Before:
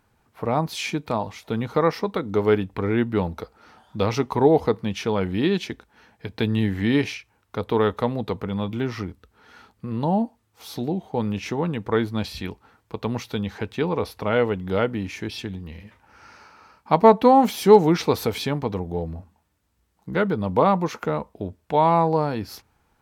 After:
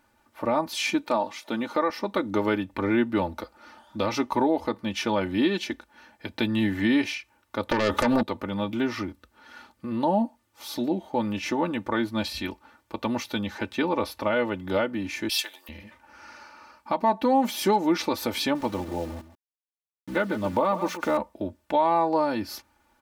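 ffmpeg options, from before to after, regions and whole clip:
ffmpeg -i in.wav -filter_complex "[0:a]asettb=1/sr,asplit=3[link_01][link_02][link_03];[link_01]atrim=end=1.044[link_04];[link_02]atrim=start=1.04:end=1.9,asetpts=PTS-STARTPTS,afade=type=in:duration=0.004:curve=qsin,afade=type=out:start_time=0.856:duration=0.004:curve=qsin,highpass=210,equalizer=frequency=12000:width=6.7:gain=-8.5[link_05];[link_03]atrim=start=1.896[link_06];[link_04][link_05]acrossfade=duration=0.004:curve1=hsin:curve2=qsin[link_07];[link_07][link_06]acrossfade=duration=0.004:curve1=qsin:curve2=hsin,asettb=1/sr,asplit=3[link_08][link_09][link_10];[link_08]atrim=end=7.714[link_11];[link_09]atrim=start=7.71:end=8.23,asetpts=PTS-STARTPTS,afade=type=in:duration=0.004:curve=qsin,afade=type=out:start_time=0.516:duration=0.004:curve=qsin,acompressor=threshold=-25dB:ratio=8:attack=3.2:release=140:knee=1:detection=peak,aeval=exprs='0.2*sin(PI/2*3.98*val(0)/0.2)':channel_layout=same[link_12];[link_10]atrim=start=8.226[link_13];[link_11][link_12]acrossfade=duration=0.004:curve1=hsin:curve2=qsin[link_14];[link_14][link_13]acrossfade=duration=0.004:curve1=qsin:curve2=hsin,asettb=1/sr,asplit=3[link_15][link_16][link_17];[link_15]atrim=end=15.294[link_18];[link_16]atrim=start=15.29:end=15.69,asetpts=PTS-STARTPTS,afade=type=in:duration=0.004:curve=qsin,afade=type=out:start_time=0.396:duration=0.004:curve=qsin,highpass=frequency=590:width=0.5412,highpass=frequency=590:width=1.3066,aemphasis=mode=production:type=75kf[link_19];[link_17]atrim=start=15.686[link_20];[link_18][link_19]acrossfade=duration=0.004:curve1=hsin:curve2=qsin[link_21];[link_21][link_20]acrossfade=duration=0.004:curve1=qsin:curve2=hsin,asettb=1/sr,asplit=3[link_22][link_23][link_24];[link_22]atrim=end=18.554[link_25];[link_23]atrim=start=18.55:end=21.17,asetpts=PTS-STARTPTS,afade=type=in:duration=0.004:curve=qsin,afade=type=out:start_time=2.616:duration=0.004:curve=qsin,lowshelf=frequency=62:gain=2,aeval=exprs='val(0)*gte(abs(val(0)),0.0106)':channel_layout=same,aecho=1:1:136:0.2,atrim=end_sample=115542[link_26];[link_24]atrim=start=21.166[link_27];[link_25][link_26]acrossfade=duration=0.004:curve1=hsin:curve2=qsin[link_28];[link_28][link_27]acrossfade=duration=0.004:curve1=qsin:curve2=hsin,lowshelf=frequency=140:gain=-9.5,aecho=1:1:3.4:0.79,alimiter=limit=-13dB:level=0:latency=1:release=306" out.wav

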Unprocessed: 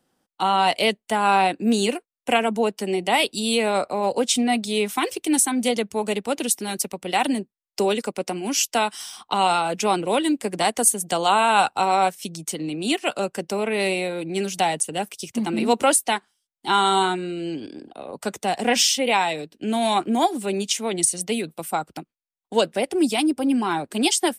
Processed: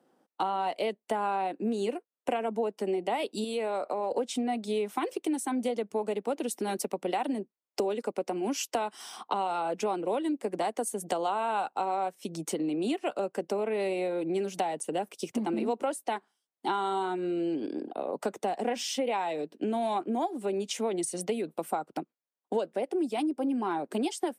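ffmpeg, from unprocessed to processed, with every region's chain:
ffmpeg -i in.wav -filter_complex "[0:a]asettb=1/sr,asplit=3[link_01][link_02][link_03];[link_01]atrim=end=3.444[link_04];[link_02]atrim=start=3.44:end=4.11,asetpts=PTS-STARTPTS,afade=type=in:duration=0.004:curve=qsin,afade=type=out:start_time=0.666:duration=0.004:curve=qsin,lowshelf=frequency=260:gain=-7.5,acompressor=threshold=-28dB:ratio=3:attack=3.2:release=140:knee=1:detection=peak[link_05];[link_03]atrim=start=4.106[link_06];[link_04][link_05]acrossfade=duration=0.004:curve1=hsin:curve2=qsin[link_07];[link_07][link_06]acrossfade=duration=0.004:curve1=qsin:curve2=hsin,highpass=310,tiltshelf=frequency=1400:gain=8.5,acompressor=threshold=-28dB:ratio=6" out.wav

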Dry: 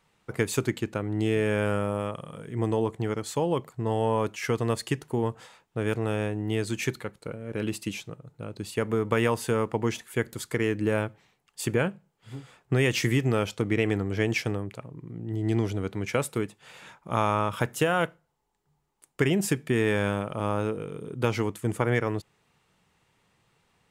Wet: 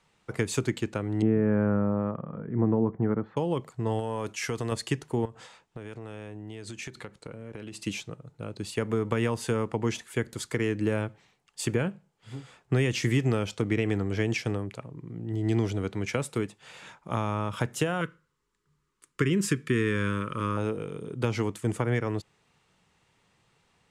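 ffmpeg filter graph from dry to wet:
ffmpeg -i in.wav -filter_complex "[0:a]asettb=1/sr,asplit=3[link_01][link_02][link_03];[link_01]atrim=end=1.224[link_04];[link_02]atrim=start=1.22:end=3.37,asetpts=PTS-STARTPTS,afade=type=in:duration=0.004:curve=qsin,afade=type=out:start_time=2.146:duration=0.004:curve=qsin,lowpass=frequency=1600:width=0.5412,lowpass=frequency=1600:width=1.3066,equalizer=frequency=210:width_type=o:width=0.98:gain=7.5[link_05];[link_03]atrim=start=3.366[link_06];[link_04][link_05]acrossfade=duration=0.004:curve1=hsin:curve2=qsin[link_07];[link_07][link_06]acrossfade=duration=0.004:curve1=qsin:curve2=hsin,asettb=1/sr,asplit=3[link_08][link_09][link_10];[link_08]atrim=end=3.994[link_11];[link_09]atrim=start=3.99:end=4.72,asetpts=PTS-STARTPTS,afade=type=in:duration=0.004:curve=qsin,afade=type=out:start_time=0.726:duration=0.004:curve=qsin,agate=range=-33dB:threshold=-42dB:ratio=3:release=100:detection=peak,highshelf=frequency=5500:gain=6.5,acompressor=threshold=-27dB:ratio=3:attack=3.2:release=140:knee=1:detection=peak[link_12];[link_10]atrim=start=4.716[link_13];[link_11][link_12]acrossfade=duration=0.004:curve1=hsin:curve2=qsin[link_14];[link_14][link_13]acrossfade=duration=0.004:curve1=qsin:curve2=hsin,asettb=1/sr,asplit=3[link_15][link_16][link_17];[link_15]atrim=end=5.254[link_18];[link_16]atrim=start=5.25:end=7.84,asetpts=PTS-STARTPTS,afade=type=in:duration=0.004:curve=qsin,afade=type=out:start_time=2.586:duration=0.004:curve=qsin,lowpass=11000,acompressor=threshold=-35dB:ratio=16:attack=3.2:release=140:knee=1:detection=peak[link_19];[link_17]atrim=start=7.836[link_20];[link_18][link_19]acrossfade=duration=0.004:curve1=hsin:curve2=qsin[link_21];[link_21][link_20]acrossfade=duration=0.004:curve1=qsin:curve2=hsin,asettb=1/sr,asplit=3[link_22][link_23][link_24];[link_22]atrim=end=18.014[link_25];[link_23]atrim=start=18.01:end=20.57,asetpts=PTS-STARTPTS,afade=type=in:duration=0.004:curve=qsin,afade=type=out:start_time=2.556:duration=0.004:curve=qsin,asuperstop=centerf=750:order=4:qfactor=0.93,equalizer=frequency=1000:width_type=o:width=1.2:gain=11[link_26];[link_24]atrim=start=20.566[link_27];[link_25][link_26]acrossfade=duration=0.004:curve1=hsin:curve2=qsin[link_28];[link_28][link_27]acrossfade=duration=0.004:curve1=qsin:curve2=hsin,lowpass=8000,highshelf=frequency=5800:gain=5.5,acrossover=split=330[link_29][link_30];[link_30]acompressor=threshold=-28dB:ratio=6[link_31];[link_29][link_31]amix=inputs=2:normalize=0" out.wav

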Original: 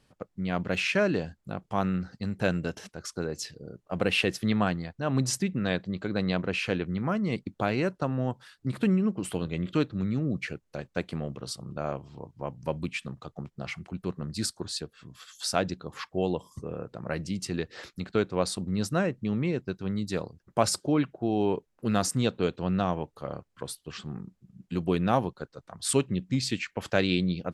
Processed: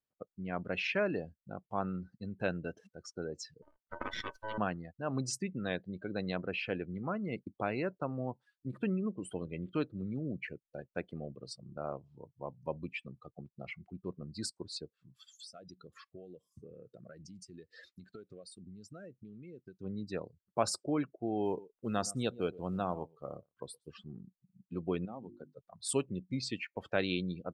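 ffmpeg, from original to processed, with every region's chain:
ffmpeg -i in.wav -filter_complex "[0:a]asettb=1/sr,asplit=3[link_01][link_02][link_03];[link_01]atrim=end=3.624[link_04];[link_02]atrim=start=3.62:end=4.58,asetpts=PTS-STARTPTS,afade=type=in:duration=0.004:curve=qsin,afade=type=out:start_time=0.956:duration=0.004:curve=qsin,aeval=exprs='val(0)*sin(2*PI*760*n/s)':channel_layout=same,aeval=exprs='max(val(0),0)':channel_layout=same[link_05];[link_03]atrim=start=4.576[link_06];[link_04][link_05]acrossfade=duration=0.004:curve1=hsin:curve2=qsin[link_07];[link_07][link_06]acrossfade=duration=0.004:curve1=qsin:curve2=hsin,asettb=1/sr,asplit=3[link_08][link_09][link_10];[link_08]atrim=end=15.164[link_11];[link_09]atrim=start=15.16:end=19.81,asetpts=PTS-STARTPTS,afade=type=in:duration=0.004:curve=qsin,afade=type=out:start_time=4.646:duration=0.004:curve=qsin,highshelf=frequency=3200:gain=11,acompressor=threshold=-36dB:ratio=10:attack=3.2:release=140:knee=1:detection=peak,asuperstop=centerf=900:order=4:qfactor=3.1[link_12];[link_10]atrim=start=19.806[link_13];[link_11][link_12]acrossfade=duration=0.004:curve1=hsin:curve2=qsin[link_14];[link_14][link_13]acrossfade=duration=0.004:curve1=qsin:curve2=hsin,asettb=1/sr,asplit=3[link_15][link_16][link_17];[link_15]atrim=end=21.454[link_18];[link_16]atrim=start=21.45:end=23.95,asetpts=PTS-STARTPTS,afade=type=in:duration=0.004:curve=qsin,afade=type=out:start_time=2.496:duration=0.004:curve=qsin,acrusher=bits=6:mode=log:mix=0:aa=0.000001,aecho=1:1:120:0.133,atrim=end_sample=110250[link_19];[link_17]atrim=start=23.946[link_20];[link_18][link_19]acrossfade=duration=0.004:curve1=hsin:curve2=qsin[link_21];[link_21][link_20]acrossfade=duration=0.004:curve1=qsin:curve2=hsin,asettb=1/sr,asplit=3[link_22][link_23][link_24];[link_22]atrim=end=25.054[link_25];[link_23]atrim=start=25.05:end=25.54,asetpts=PTS-STARTPTS,afade=type=in:duration=0.004:curve=qsin,afade=type=out:start_time=0.486:duration=0.004:curve=qsin,equalizer=frequency=240:width=1.7:gain=7.5,bandreject=frequency=50:width_type=h:width=6,bandreject=frequency=100:width_type=h:width=6,bandreject=frequency=150:width_type=h:width=6,bandreject=frequency=200:width_type=h:width=6,bandreject=frequency=250:width_type=h:width=6,bandreject=frequency=300:width_type=h:width=6,bandreject=frequency=350:width_type=h:width=6,acompressor=threshold=-34dB:ratio=4:attack=3.2:release=140:knee=1:detection=peak[link_26];[link_24]atrim=start=25.536[link_27];[link_25][link_26]acrossfade=duration=0.004:curve1=hsin:curve2=qsin[link_28];[link_28][link_27]acrossfade=duration=0.004:curve1=qsin:curve2=hsin,afftdn=noise_reduction=23:noise_floor=-37,bass=frequency=250:gain=-5,treble=frequency=4000:gain=-1,volume=-6dB" out.wav

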